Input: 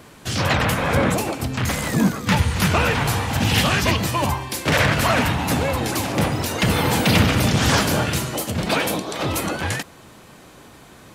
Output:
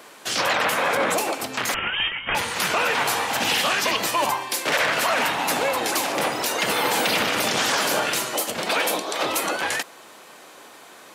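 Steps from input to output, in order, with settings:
high-pass filter 460 Hz 12 dB per octave
brickwall limiter −14.5 dBFS, peak gain reduction 7 dB
0:01.74–0:02.35: voice inversion scrambler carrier 3,400 Hz
level +2.5 dB

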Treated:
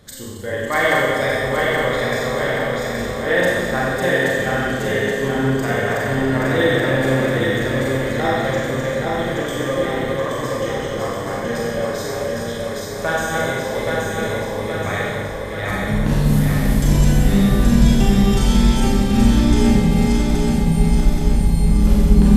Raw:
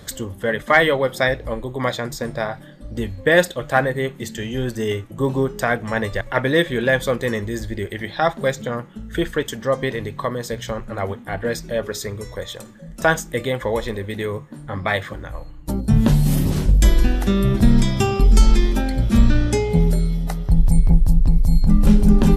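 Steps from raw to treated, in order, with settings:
feedback delay that plays each chunk backwards 413 ms, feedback 76%, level −1.5 dB
four-comb reverb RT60 1.6 s, combs from 30 ms, DRR −5 dB
level −8 dB

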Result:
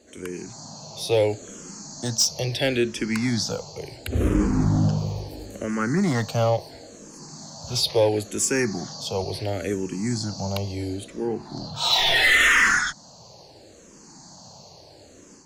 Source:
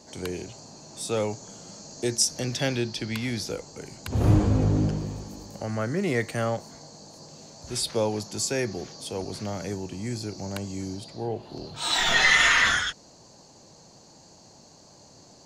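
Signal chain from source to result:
automatic gain control gain up to 8 dB
hard clipping −12 dBFS, distortion −14 dB
frequency shifter mixed with the dry sound −0.73 Hz

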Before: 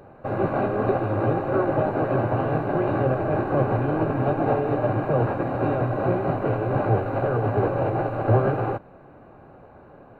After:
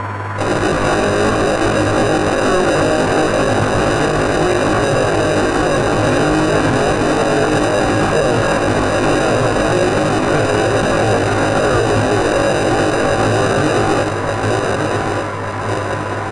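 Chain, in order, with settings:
fade in at the beginning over 0.53 s
spectral tilt +4 dB per octave
steady tone 1,000 Hz −41 dBFS
in parallel at 0 dB: sample-rate reduction 1,100 Hz, jitter 0%
on the sum: noise in a band 130–1,700 Hz −43 dBFS
time stretch by overlap-add 1.6×, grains 104 ms
on a send: repeating echo 1,183 ms, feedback 43%, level −11 dB
on the sum: downsampling to 22,050 Hz
boost into a limiter +22.5 dB
level −4.5 dB

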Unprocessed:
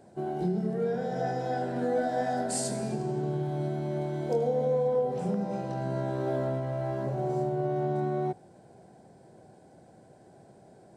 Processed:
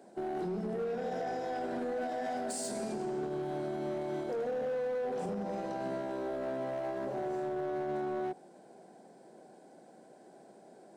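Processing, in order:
high-pass filter 210 Hz 24 dB per octave
brickwall limiter −27.5 dBFS, peak gain reduction 9 dB
hard clipping −31 dBFS, distortion −18 dB

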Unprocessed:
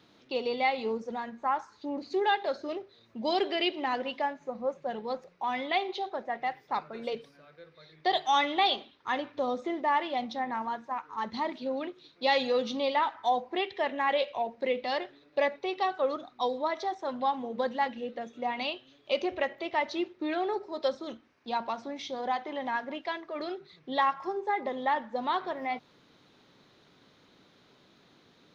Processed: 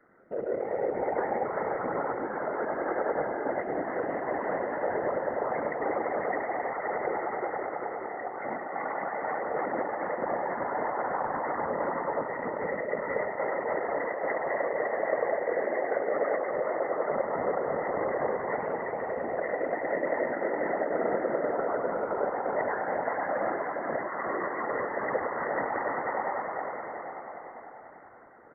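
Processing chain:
echo that builds up and dies away 98 ms, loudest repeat 5, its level −11.5 dB
in parallel at −12 dB: centre clipping without the shift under −27 dBFS
on the sum: compressor whose output falls as the input rises −31 dBFS, ratio −1
Chebyshev low-pass with heavy ripple 2,000 Hz, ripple 9 dB
low-shelf EQ 470 Hz −9 dB
multi-tap delay 107/346/516 ms −6/−6/−7.5 dB
random phases in short frames
level +6 dB

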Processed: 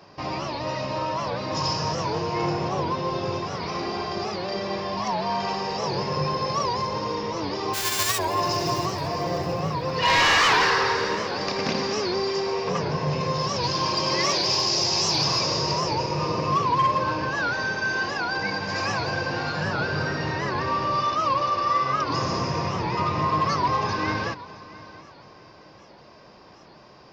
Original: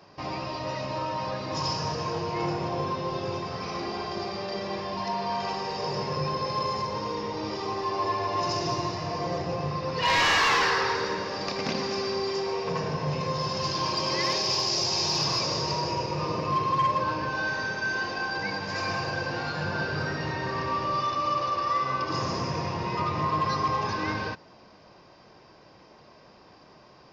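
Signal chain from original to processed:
0:07.73–0:08.18: spectral envelope flattened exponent 0.1
echo machine with several playback heads 224 ms, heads first and third, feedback 48%, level −20 dB
wow of a warped record 78 rpm, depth 160 cents
level +3.5 dB

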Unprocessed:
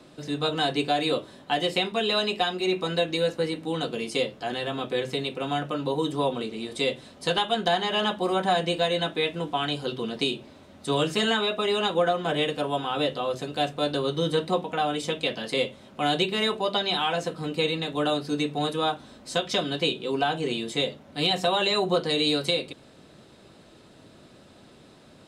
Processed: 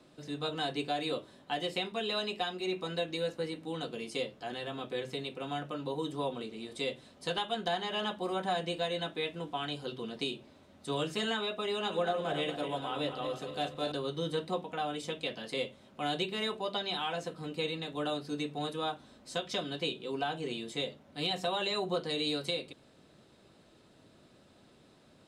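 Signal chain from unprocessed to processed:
0:11.74–0:13.92: feedback delay that plays each chunk backwards 118 ms, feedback 63%, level −8 dB
level −9 dB

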